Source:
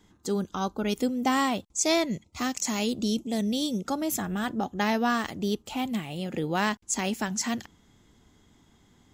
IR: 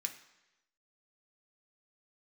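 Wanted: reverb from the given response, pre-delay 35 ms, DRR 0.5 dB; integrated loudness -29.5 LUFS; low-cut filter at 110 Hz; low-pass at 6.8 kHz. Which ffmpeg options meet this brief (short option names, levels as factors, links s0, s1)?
-filter_complex "[0:a]highpass=110,lowpass=6800,asplit=2[s0][s1];[1:a]atrim=start_sample=2205,adelay=35[s2];[s1][s2]afir=irnorm=-1:irlink=0,volume=1.06[s3];[s0][s3]amix=inputs=2:normalize=0,volume=0.708"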